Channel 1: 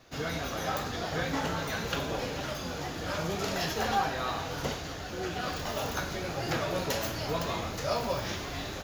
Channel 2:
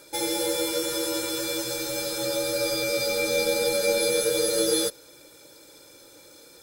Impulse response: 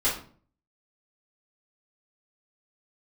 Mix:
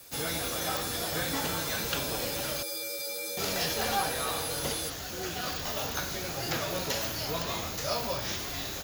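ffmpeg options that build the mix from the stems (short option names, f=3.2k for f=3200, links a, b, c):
-filter_complex "[0:a]aemphasis=mode=production:type=75fm,volume=-2dB,asplit=3[a][b][c];[a]atrim=end=2.63,asetpts=PTS-STARTPTS,afade=t=out:st=2.626:d=0.004:c=hsin[d];[b]atrim=start=2.63:end=3.37,asetpts=PTS-STARTPTS,volume=0[e];[c]atrim=start=3.37,asetpts=PTS-STARTPTS,afade=t=in:d=0.004:c=hsin[f];[d][e][f]concat=n=3:v=0:a=1[g];[1:a]alimiter=limit=-19dB:level=0:latency=1:release=59,aemphasis=mode=production:type=bsi,volume=-10.5dB[h];[g][h]amix=inputs=2:normalize=0,acrossover=split=5800[i][j];[j]acompressor=threshold=-35dB:ratio=4:attack=1:release=60[k];[i][k]amix=inputs=2:normalize=0"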